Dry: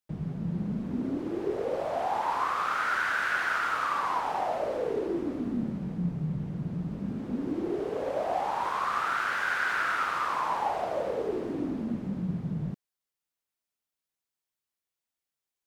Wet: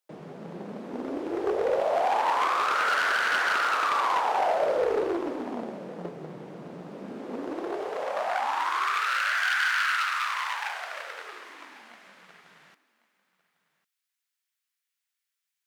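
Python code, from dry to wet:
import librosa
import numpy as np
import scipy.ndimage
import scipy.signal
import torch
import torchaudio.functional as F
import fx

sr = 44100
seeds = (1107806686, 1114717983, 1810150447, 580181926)

y = np.minimum(x, 2.0 * 10.0 ** (-26.0 / 20.0) - x)
y = fx.filter_sweep_highpass(y, sr, from_hz=460.0, to_hz=1700.0, start_s=7.35, end_s=9.1, q=1.3)
y = y + 10.0 ** (-20.0 / 20.0) * np.pad(y, (int(1101 * sr / 1000.0), 0))[:len(y)]
y = fx.doppler_dist(y, sr, depth_ms=0.17)
y = y * librosa.db_to_amplitude(4.0)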